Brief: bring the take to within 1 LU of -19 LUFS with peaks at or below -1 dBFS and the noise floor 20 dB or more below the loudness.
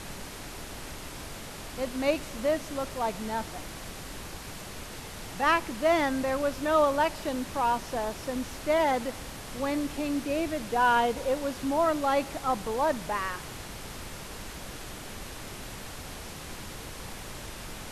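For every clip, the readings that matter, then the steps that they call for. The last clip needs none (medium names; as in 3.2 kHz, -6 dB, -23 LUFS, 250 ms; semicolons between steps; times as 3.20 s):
noise floor -42 dBFS; noise floor target -51 dBFS; loudness -30.5 LUFS; peak level -11.5 dBFS; loudness target -19.0 LUFS
-> noise print and reduce 9 dB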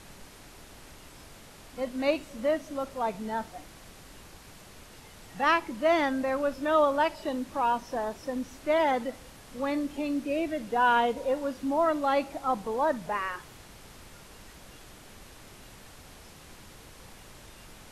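noise floor -51 dBFS; loudness -28.5 LUFS; peak level -12.0 dBFS; loudness target -19.0 LUFS
-> trim +9.5 dB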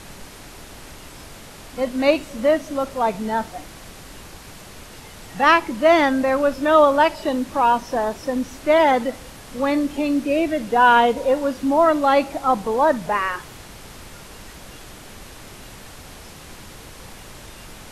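loudness -19.0 LUFS; peak level -2.0 dBFS; noise floor -41 dBFS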